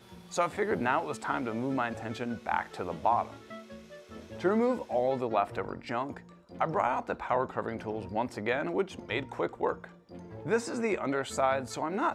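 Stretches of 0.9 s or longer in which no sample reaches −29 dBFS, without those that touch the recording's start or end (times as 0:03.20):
0:03.22–0:04.44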